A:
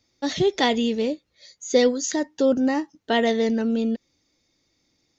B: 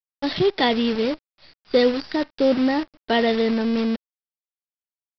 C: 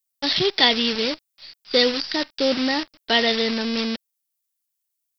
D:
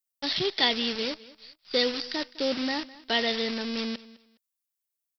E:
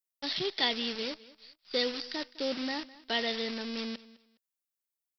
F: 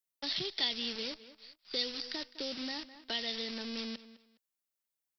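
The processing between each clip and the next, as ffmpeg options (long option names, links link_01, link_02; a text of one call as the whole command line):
ffmpeg -i in.wav -af "acontrast=53,aresample=11025,acrusher=bits=5:dc=4:mix=0:aa=0.000001,aresample=44100,volume=-4.5dB" out.wav
ffmpeg -i in.wav -af "crystalizer=i=8.5:c=0,volume=-4.5dB" out.wav
ffmpeg -i in.wav -af "aecho=1:1:207|414:0.106|0.0265,volume=-7dB" out.wav
ffmpeg -i in.wav -af "equalizer=frequency=93:width=3.8:gain=-14.5,volume=-5dB" out.wav
ffmpeg -i in.wav -filter_complex "[0:a]acrossover=split=150|3000[link_01][link_02][link_03];[link_02]acompressor=threshold=-40dB:ratio=6[link_04];[link_01][link_04][link_03]amix=inputs=3:normalize=0" out.wav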